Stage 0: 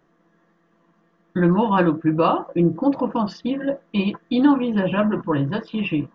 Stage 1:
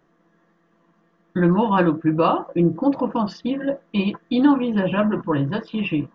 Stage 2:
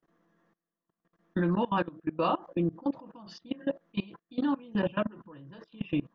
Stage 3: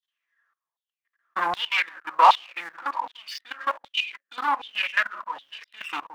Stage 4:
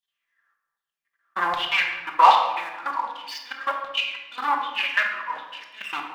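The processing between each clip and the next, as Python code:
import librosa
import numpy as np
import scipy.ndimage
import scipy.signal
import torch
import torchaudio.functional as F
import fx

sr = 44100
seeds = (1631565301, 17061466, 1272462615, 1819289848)

y1 = x
y2 = fx.dynamic_eq(y1, sr, hz=4000.0, q=1.1, threshold_db=-45.0, ratio=4.0, max_db=5)
y2 = fx.tremolo_shape(y2, sr, shape='triangle', hz=0.89, depth_pct=65)
y2 = fx.level_steps(y2, sr, step_db=22)
y2 = y2 * librosa.db_to_amplitude(-4.0)
y3 = fx.echo_wet_lowpass(y2, sr, ms=170, feedback_pct=44, hz=700.0, wet_db=-23.0)
y3 = fx.leveller(y3, sr, passes=3)
y3 = fx.filter_lfo_highpass(y3, sr, shape='saw_down', hz=1.3, low_hz=820.0, high_hz=3700.0, q=7.3)
y4 = fx.room_shoebox(y3, sr, seeds[0], volume_m3=770.0, walls='mixed', distance_m=1.2)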